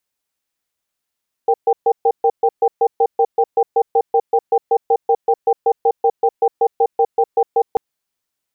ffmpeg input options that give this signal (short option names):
-f lavfi -i "aevalsrc='0.224*(sin(2*PI*464*t)+sin(2*PI*788*t))*clip(min(mod(t,0.19),0.06-mod(t,0.19))/0.005,0,1)':d=6.29:s=44100"